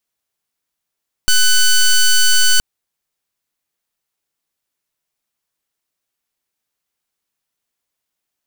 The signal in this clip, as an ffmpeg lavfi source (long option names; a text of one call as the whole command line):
ffmpeg -f lavfi -i "aevalsrc='0.316*(2*lt(mod(1500*t,1),0.1)-1)':duration=1.32:sample_rate=44100" out.wav